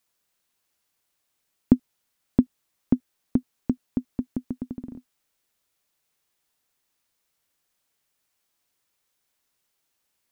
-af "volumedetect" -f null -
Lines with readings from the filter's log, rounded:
mean_volume: -32.9 dB
max_volume: -2.4 dB